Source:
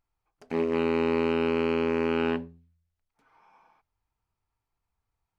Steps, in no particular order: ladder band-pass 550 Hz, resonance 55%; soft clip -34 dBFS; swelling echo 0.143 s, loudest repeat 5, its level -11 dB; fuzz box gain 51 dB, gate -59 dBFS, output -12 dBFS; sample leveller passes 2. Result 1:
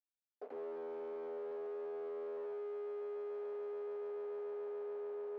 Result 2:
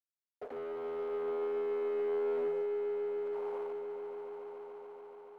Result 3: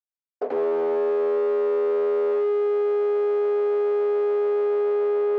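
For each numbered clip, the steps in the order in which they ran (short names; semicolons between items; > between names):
fuzz box > swelling echo > sample leveller > soft clip > ladder band-pass; fuzz box > soft clip > ladder band-pass > sample leveller > swelling echo; swelling echo > soft clip > sample leveller > fuzz box > ladder band-pass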